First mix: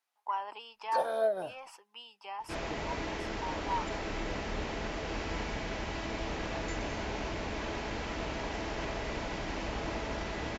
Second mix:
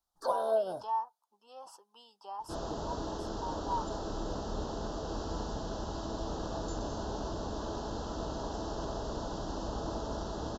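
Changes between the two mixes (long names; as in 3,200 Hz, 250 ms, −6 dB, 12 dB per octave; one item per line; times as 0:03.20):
first sound: entry −0.70 s
master: add Butterworth band-reject 2,200 Hz, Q 0.9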